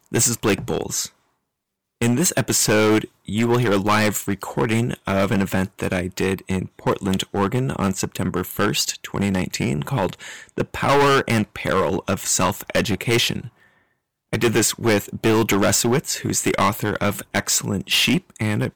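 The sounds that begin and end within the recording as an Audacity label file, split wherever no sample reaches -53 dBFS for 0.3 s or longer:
2.010000	13.830000	sound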